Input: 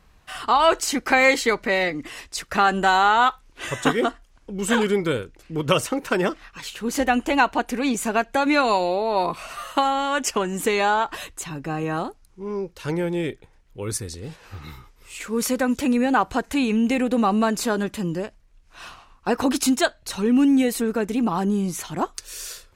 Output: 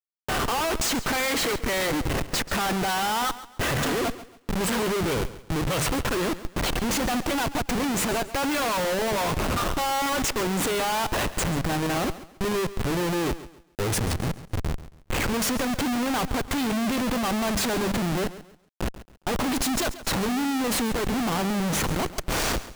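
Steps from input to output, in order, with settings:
mains-hum notches 50/100/150/200 Hz
comparator with hysteresis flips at −32.5 dBFS
feedback echo at a low word length 137 ms, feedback 35%, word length 8 bits, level −15 dB
level −2 dB

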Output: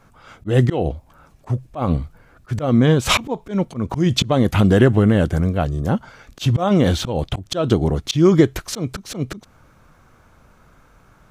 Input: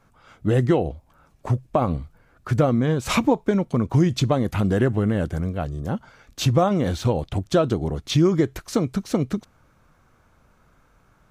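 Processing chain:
dynamic equaliser 3,200 Hz, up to +6 dB, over −49 dBFS, Q 3.6
volume swells 173 ms
level +7 dB

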